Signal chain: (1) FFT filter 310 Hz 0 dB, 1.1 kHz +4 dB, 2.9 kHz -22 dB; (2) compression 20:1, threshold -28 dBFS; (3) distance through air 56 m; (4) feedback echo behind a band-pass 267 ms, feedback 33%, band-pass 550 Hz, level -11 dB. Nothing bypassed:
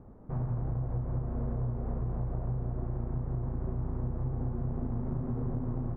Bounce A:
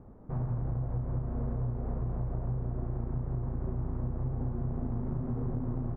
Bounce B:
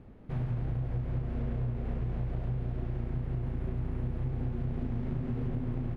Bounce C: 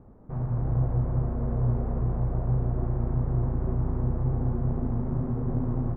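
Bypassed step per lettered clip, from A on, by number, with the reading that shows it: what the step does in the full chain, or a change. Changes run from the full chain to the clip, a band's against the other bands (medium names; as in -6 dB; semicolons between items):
4, echo-to-direct -15.5 dB to none; 1, 1 kHz band -3.0 dB; 2, mean gain reduction 6.0 dB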